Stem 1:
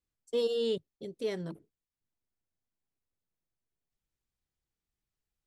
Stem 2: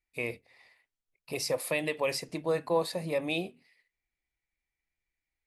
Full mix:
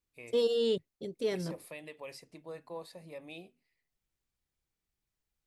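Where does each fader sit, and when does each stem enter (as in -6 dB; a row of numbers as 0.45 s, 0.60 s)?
+1.5 dB, -15.5 dB; 0.00 s, 0.00 s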